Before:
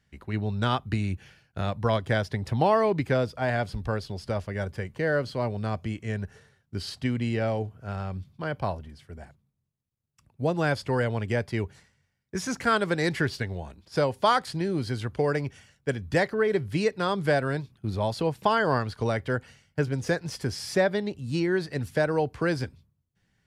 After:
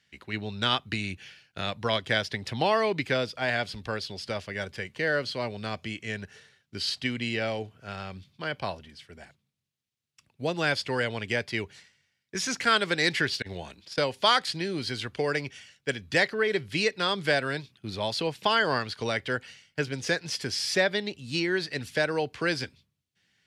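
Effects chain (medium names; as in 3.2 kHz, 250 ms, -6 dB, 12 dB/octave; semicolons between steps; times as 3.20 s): frequency weighting D; 13.42–13.98 s: compressor with a negative ratio -36 dBFS, ratio -0.5; trim -2.5 dB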